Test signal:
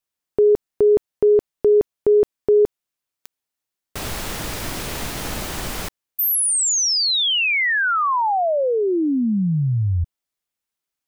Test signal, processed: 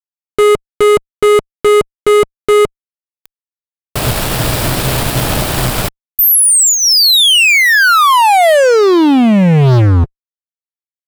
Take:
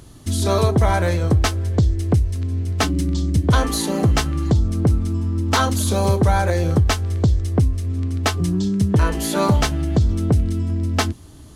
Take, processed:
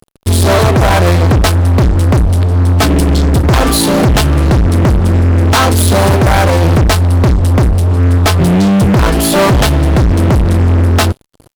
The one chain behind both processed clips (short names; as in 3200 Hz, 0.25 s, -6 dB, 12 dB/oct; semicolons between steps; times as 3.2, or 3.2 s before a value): thirty-one-band EQ 125 Hz +11 dB, 630 Hz +4 dB, 2000 Hz -4 dB, 6300 Hz -9 dB; fuzz box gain 26 dB, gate -34 dBFS; upward expander 1.5:1, over -33 dBFS; gain +7 dB